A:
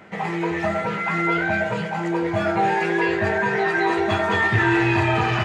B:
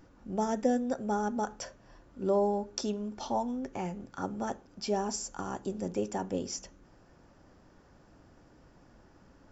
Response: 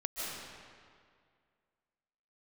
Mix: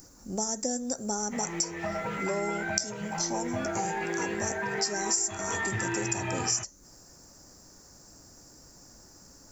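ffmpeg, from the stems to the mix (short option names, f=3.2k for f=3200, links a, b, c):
-filter_complex "[0:a]lowpass=7.3k,adelay=1200,volume=-7.5dB[a];[1:a]aexciter=amount=14.8:drive=6:freq=4.9k,volume=1.5dB[b];[a][b]amix=inputs=2:normalize=0,acompressor=threshold=-28dB:ratio=4"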